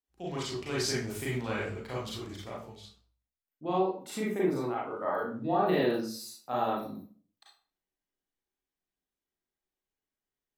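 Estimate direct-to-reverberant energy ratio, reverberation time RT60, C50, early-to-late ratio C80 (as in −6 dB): −6.5 dB, 0.45 s, 1.0 dB, 7.0 dB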